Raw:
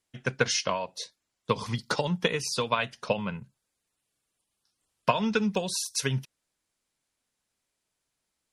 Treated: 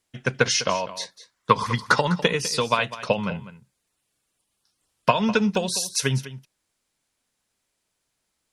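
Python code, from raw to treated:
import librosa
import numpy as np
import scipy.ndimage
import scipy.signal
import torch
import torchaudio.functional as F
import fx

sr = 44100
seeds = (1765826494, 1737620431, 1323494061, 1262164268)

y = fx.band_shelf(x, sr, hz=1400.0, db=8.0, octaves=1.3, at=(0.94, 2.15))
y = y + 10.0 ** (-15.0 / 20.0) * np.pad(y, (int(201 * sr / 1000.0), 0))[:len(y)]
y = y * librosa.db_to_amplitude(5.0)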